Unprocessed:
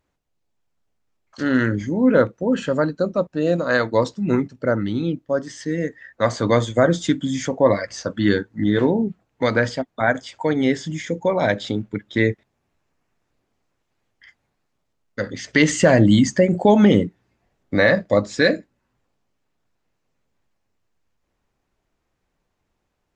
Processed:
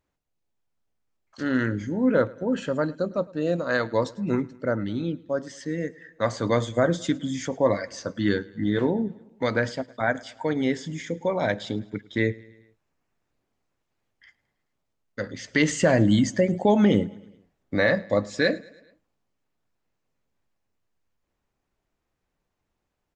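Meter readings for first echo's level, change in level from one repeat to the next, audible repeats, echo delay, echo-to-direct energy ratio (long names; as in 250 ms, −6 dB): −23.0 dB, −5.0 dB, 3, 107 ms, −21.5 dB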